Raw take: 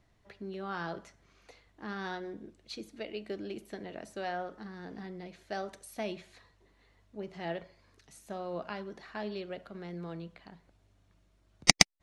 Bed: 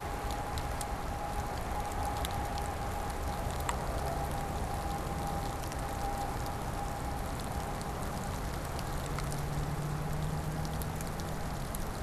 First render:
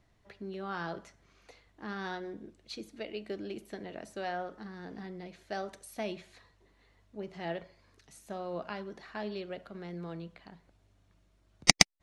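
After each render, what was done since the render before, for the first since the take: no audible change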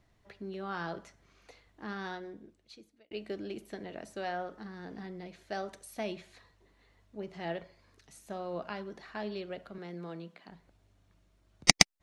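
1.88–3.11 s: fade out; 9.78–10.49 s: high-pass 170 Hz 24 dB/octave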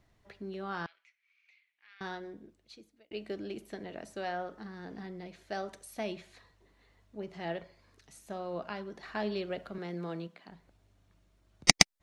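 0.86–2.01 s: ladder band-pass 2.5 kHz, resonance 75%; 9.03–10.27 s: gain +4 dB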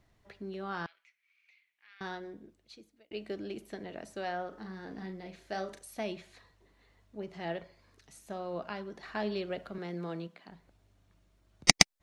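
4.49–5.79 s: doubling 37 ms -7 dB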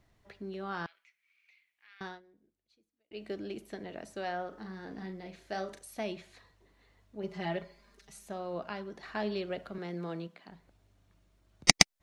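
2.01–3.25 s: dip -18.5 dB, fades 0.21 s; 7.23–8.28 s: comb 5 ms, depth 97%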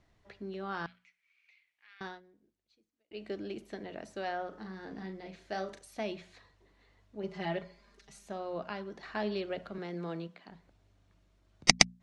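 low-pass 7.5 kHz 12 dB/octave; hum notches 60/120/180/240 Hz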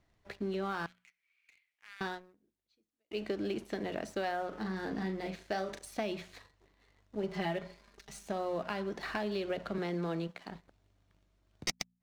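compression 20:1, threshold -38 dBFS, peak gain reduction 25.5 dB; waveshaping leveller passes 2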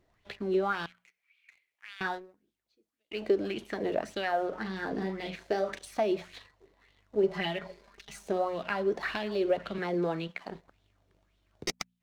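wow and flutter 26 cents; sweeping bell 1.8 Hz 380–3500 Hz +12 dB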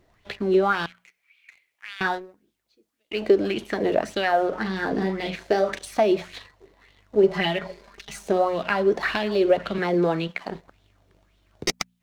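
trim +8.5 dB

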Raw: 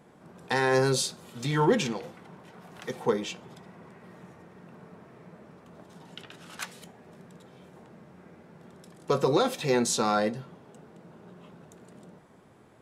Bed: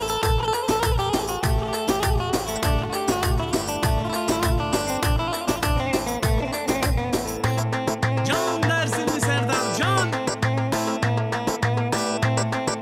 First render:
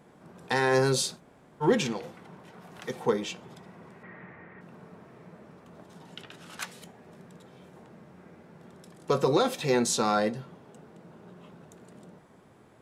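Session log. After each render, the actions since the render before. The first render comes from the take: 1.18–1.63 s: room tone, crossfade 0.06 s; 4.03–4.61 s: resonant low-pass 2 kHz, resonance Q 4.2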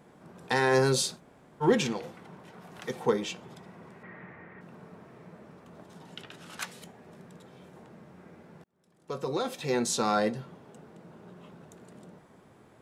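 8.64–10.30 s: fade in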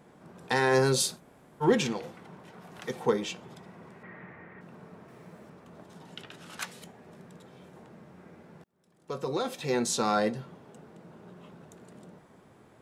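1.00–1.64 s: peaking EQ 12 kHz +8 dB 0.71 oct; 5.08–5.50 s: treble shelf 5.1 kHz +8.5 dB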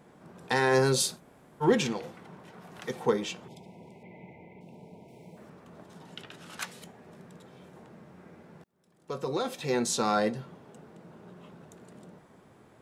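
3.48–5.37 s: brick-wall FIR band-stop 1–2 kHz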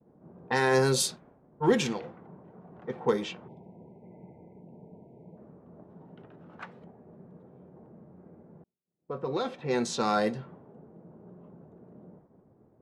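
expander -53 dBFS; level-controlled noise filter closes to 560 Hz, open at -22 dBFS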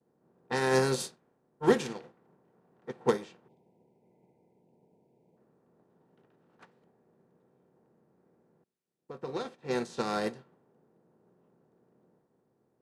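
spectral levelling over time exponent 0.6; upward expansion 2.5:1, over -37 dBFS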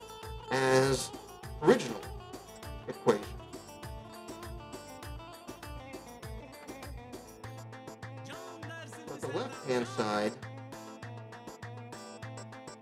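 add bed -22.5 dB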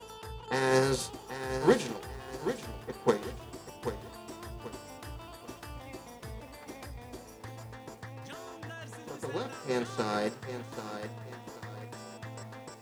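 bit-crushed delay 785 ms, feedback 35%, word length 9-bit, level -9.5 dB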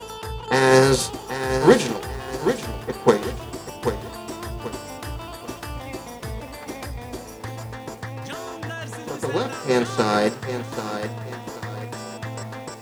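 trim +11.5 dB; peak limiter -3 dBFS, peak gain reduction 2 dB

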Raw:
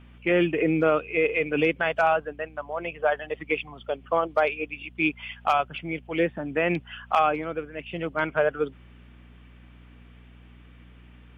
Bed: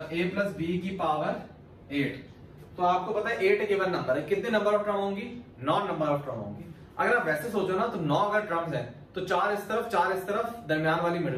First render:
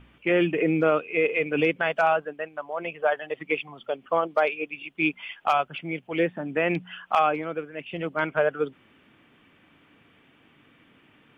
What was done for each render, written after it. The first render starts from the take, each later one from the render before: de-hum 60 Hz, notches 4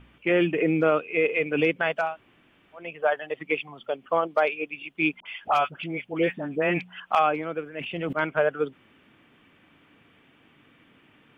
2.05–2.84 s: room tone, crossfade 0.24 s; 5.20–7.00 s: phase dispersion highs, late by 59 ms, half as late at 880 Hz; 7.64–8.13 s: decay stretcher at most 34 dB/s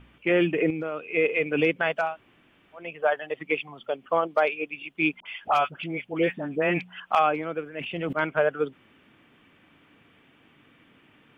0.70–1.14 s: compression 4:1, threshold -29 dBFS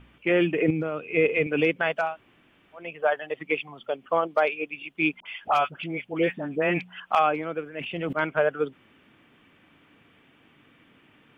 0.68–1.47 s: peaking EQ 110 Hz +9 dB 2.4 oct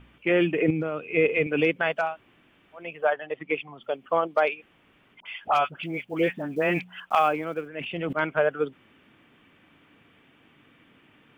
3.10–3.82 s: distance through air 180 m; 4.57–5.17 s: room tone, crossfade 0.10 s; 5.82–7.68 s: block-companded coder 7-bit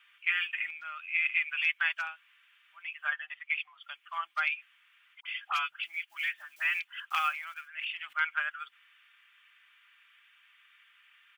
inverse Chebyshev high-pass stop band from 530 Hz, stop band 50 dB; comb 5 ms, depth 35%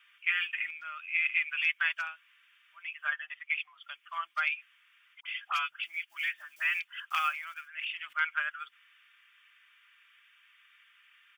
peaking EQ 810 Hz -6.5 dB 0.3 oct; band-stop 4 kHz, Q 11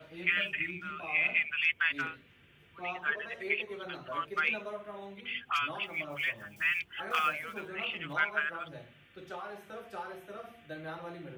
add bed -16 dB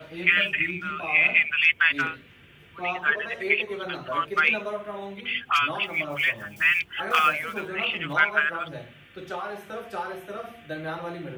trim +9 dB

